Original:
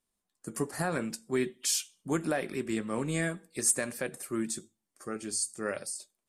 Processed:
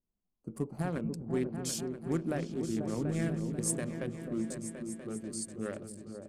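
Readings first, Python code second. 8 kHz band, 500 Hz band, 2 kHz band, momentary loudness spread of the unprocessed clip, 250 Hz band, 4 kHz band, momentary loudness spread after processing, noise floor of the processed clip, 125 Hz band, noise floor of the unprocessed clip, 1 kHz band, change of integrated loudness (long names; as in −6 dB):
−8.0 dB, −3.0 dB, −9.5 dB, 10 LU, +0.5 dB, −8.5 dB, 8 LU, −85 dBFS, +3.5 dB, −85 dBFS, −6.5 dB, −3.5 dB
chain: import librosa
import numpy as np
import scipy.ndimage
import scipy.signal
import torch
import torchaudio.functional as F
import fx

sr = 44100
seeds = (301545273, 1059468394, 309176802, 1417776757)

p1 = fx.wiener(x, sr, points=25)
p2 = fx.low_shelf(p1, sr, hz=270.0, db=10.5)
p3 = p2 + fx.echo_opening(p2, sr, ms=245, hz=200, octaves=2, feedback_pct=70, wet_db=-3, dry=0)
y = p3 * librosa.db_to_amplitude(-7.0)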